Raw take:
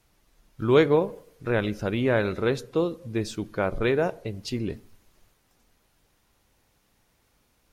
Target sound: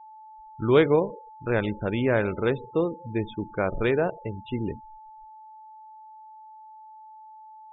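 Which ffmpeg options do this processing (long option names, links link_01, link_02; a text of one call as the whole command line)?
ffmpeg -i in.wav -af "aresample=8000,aresample=44100,aeval=exprs='val(0)+0.00631*sin(2*PI*870*n/s)':channel_layout=same,afftfilt=real='re*gte(hypot(re,im),0.0178)':imag='im*gte(hypot(re,im),0.0178)':win_size=1024:overlap=0.75" out.wav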